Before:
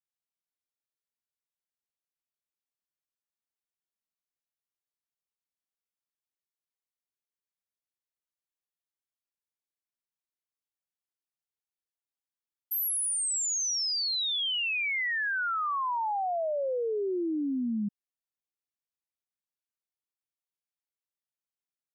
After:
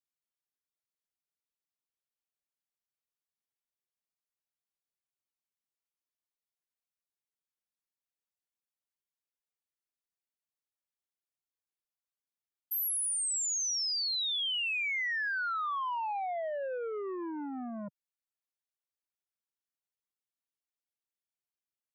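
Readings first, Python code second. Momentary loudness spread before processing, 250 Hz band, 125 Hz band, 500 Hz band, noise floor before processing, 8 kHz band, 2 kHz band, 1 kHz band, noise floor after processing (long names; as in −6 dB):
4 LU, −9.0 dB, can't be measured, −6.0 dB, below −85 dBFS, −2.5 dB, −3.0 dB, −4.0 dB, below −85 dBFS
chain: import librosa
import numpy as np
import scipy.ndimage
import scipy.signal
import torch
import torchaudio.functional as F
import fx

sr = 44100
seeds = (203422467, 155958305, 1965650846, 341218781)

y = fx.dereverb_blind(x, sr, rt60_s=1.0)
y = fx.transformer_sat(y, sr, knee_hz=610.0)
y = y * librosa.db_to_amplitude(-2.5)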